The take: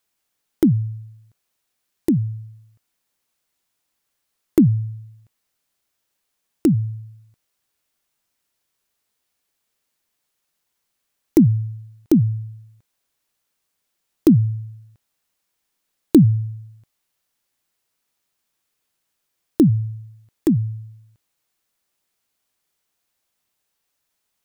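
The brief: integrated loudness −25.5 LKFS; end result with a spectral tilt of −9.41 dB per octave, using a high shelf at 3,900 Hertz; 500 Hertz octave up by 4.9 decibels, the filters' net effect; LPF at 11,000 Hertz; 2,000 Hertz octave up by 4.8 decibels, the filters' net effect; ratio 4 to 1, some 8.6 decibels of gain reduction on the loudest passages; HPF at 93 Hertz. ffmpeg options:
ffmpeg -i in.wav -af "highpass=93,lowpass=11000,equalizer=frequency=500:width_type=o:gain=8.5,equalizer=frequency=2000:width_type=o:gain=4.5,highshelf=frequency=3900:gain=4,acompressor=threshold=-16dB:ratio=4,volume=-1dB" out.wav

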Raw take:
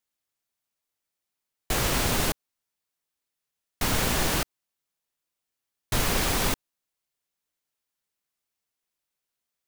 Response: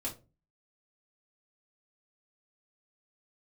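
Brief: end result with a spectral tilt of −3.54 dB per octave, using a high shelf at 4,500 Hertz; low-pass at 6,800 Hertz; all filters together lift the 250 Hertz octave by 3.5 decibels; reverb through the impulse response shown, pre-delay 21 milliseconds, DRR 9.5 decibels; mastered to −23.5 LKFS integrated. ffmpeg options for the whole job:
-filter_complex "[0:a]lowpass=6800,equalizer=frequency=250:width_type=o:gain=4.5,highshelf=frequency=4500:gain=4,asplit=2[link_01][link_02];[1:a]atrim=start_sample=2205,adelay=21[link_03];[link_02][link_03]afir=irnorm=-1:irlink=0,volume=-10.5dB[link_04];[link_01][link_04]amix=inputs=2:normalize=0,volume=2dB"

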